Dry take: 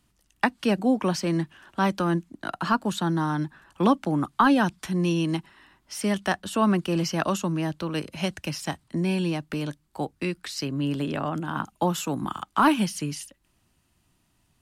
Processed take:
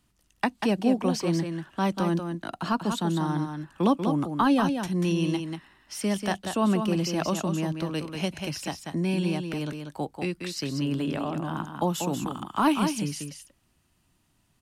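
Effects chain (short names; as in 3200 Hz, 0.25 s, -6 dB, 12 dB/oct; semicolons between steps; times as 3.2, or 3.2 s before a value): on a send: echo 0.189 s -6.5 dB; on the sum: dynamic EQ 1500 Hz, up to -6 dB, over -40 dBFS, Q 1.5; gain -1.5 dB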